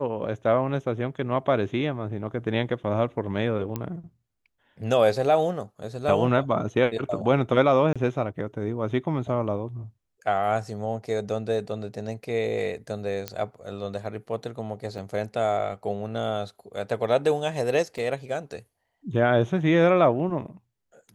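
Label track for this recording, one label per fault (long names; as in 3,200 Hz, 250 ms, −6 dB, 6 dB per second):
3.760000	3.760000	click −15 dBFS
7.930000	7.960000	drop-out 26 ms
13.280000	13.280000	click −14 dBFS
14.980000	14.980000	drop-out 3.2 ms
17.980000	17.980000	drop-out 4 ms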